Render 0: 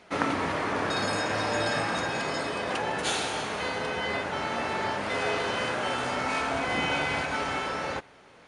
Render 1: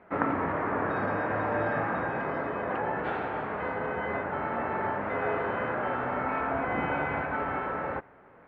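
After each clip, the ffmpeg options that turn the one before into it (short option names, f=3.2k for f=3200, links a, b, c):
-af "lowpass=f=1.8k:w=0.5412,lowpass=f=1.8k:w=1.3066"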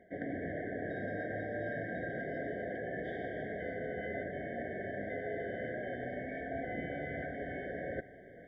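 -af "areverse,acompressor=threshold=-38dB:ratio=6,areverse,afftfilt=real='re*eq(mod(floor(b*sr/1024/760),2),0)':imag='im*eq(mod(floor(b*sr/1024/760),2),0)':win_size=1024:overlap=0.75,volume=3.5dB"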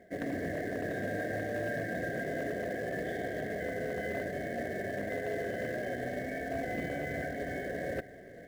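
-filter_complex "[0:a]asplit=2[a][b];[b]acrusher=bits=2:mode=log:mix=0:aa=0.000001,volume=-6dB[c];[a][c]amix=inputs=2:normalize=0,volume=27.5dB,asoftclip=hard,volume=-27.5dB"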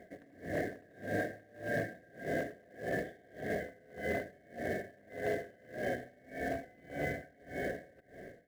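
-af "aeval=exprs='val(0)*pow(10,-29*(0.5-0.5*cos(2*PI*1.7*n/s))/20)':c=same,volume=2.5dB"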